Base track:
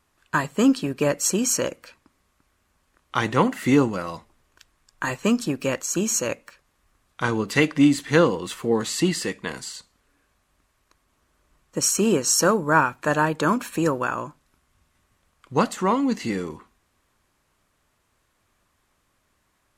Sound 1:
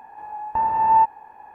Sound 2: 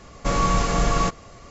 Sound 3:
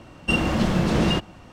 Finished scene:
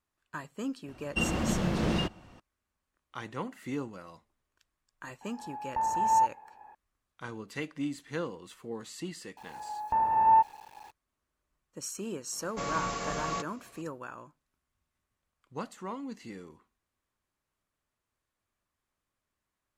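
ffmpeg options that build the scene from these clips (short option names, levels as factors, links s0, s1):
-filter_complex "[1:a]asplit=2[s0][s1];[0:a]volume=0.133[s2];[s1]aeval=exprs='val(0)*gte(abs(val(0)),0.00501)':c=same[s3];[2:a]highpass=f=250:p=1[s4];[3:a]atrim=end=1.52,asetpts=PTS-STARTPTS,volume=0.398,afade=t=in:d=0.004:c=hsin,afade=t=out:st=1.516:d=0.004:c=hsin,adelay=880[s5];[s0]atrim=end=1.54,asetpts=PTS-STARTPTS,volume=0.376,afade=t=in:d=0.004:c=hsin,afade=t=out:st=1.536:d=0.004:c=hsin,adelay=229761S[s6];[s3]atrim=end=1.54,asetpts=PTS-STARTPTS,volume=0.531,afade=t=in:d=0.004:c=hsin,afade=t=out:st=1.536:d=0.004:c=hsin,adelay=9370[s7];[s4]atrim=end=1.5,asetpts=PTS-STARTPTS,volume=0.316,afade=t=in:d=0.004:c=hsin,afade=t=out:st=1.496:d=0.004:c=hsin,adelay=12320[s8];[s2][s5][s6][s7][s8]amix=inputs=5:normalize=0"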